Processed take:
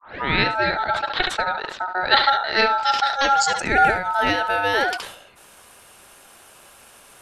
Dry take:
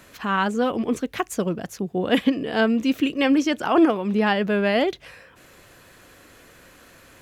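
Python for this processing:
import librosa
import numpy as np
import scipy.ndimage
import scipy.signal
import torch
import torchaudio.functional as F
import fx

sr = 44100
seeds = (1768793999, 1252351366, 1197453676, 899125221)

p1 = fx.tape_start_head(x, sr, length_s=0.38)
p2 = fx.filter_sweep_lowpass(p1, sr, from_hz=2800.0, to_hz=10000.0, start_s=2.42, end_s=4.08, q=5.2)
p3 = p2 * np.sin(2.0 * np.pi * 1100.0 * np.arange(len(p2)) / sr)
p4 = p3 + fx.echo_single(p3, sr, ms=71, db=-14.5, dry=0)
p5 = fx.sustainer(p4, sr, db_per_s=81.0)
y = p5 * librosa.db_to_amplitude(2.5)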